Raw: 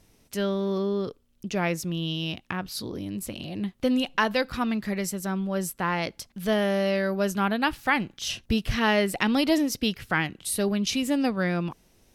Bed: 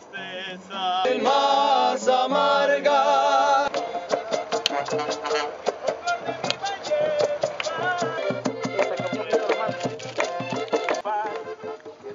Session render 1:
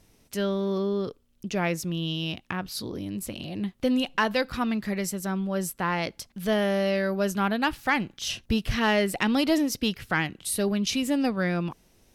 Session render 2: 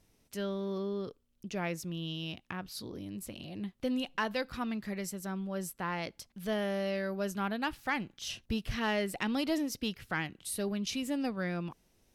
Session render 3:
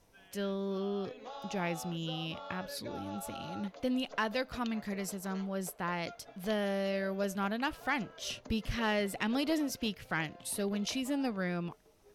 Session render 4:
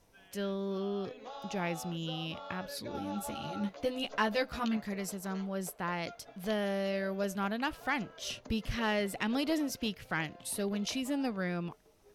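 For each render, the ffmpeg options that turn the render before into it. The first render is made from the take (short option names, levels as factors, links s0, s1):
-af "asoftclip=type=tanh:threshold=0.316"
-af "volume=0.376"
-filter_complex "[1:a]volume=0.0501[s0];[0:a][s0]amix=inputs=2:normalize=0"
-filter_complex "[0:a]asettb=1/sr,asplit=3[s0][s1][s2];[s0]atrim=end=2.934[s3];[s1]atrim=start=2.93:end=4.77,asetpts=PTS-STARTPTS,afade=t=in:d=0.004:c=qsin,afade=t=out:st=1.836:d=0.004:c=qsin,asplit=2[s4][s5];[s5]adelay=14,volume=0.794[s6];[s4][s6]amix=inputs=2:normalize=0,atrim=end_sample=81144[s7];[s2]atrim=start=4.766[s8];[s3][s7]acrossfade=d=0.004:c1=hsin:c2=qsin[s9];[s9][s8]acrossfade=d=0.004:c1=qsin:c2=hsin"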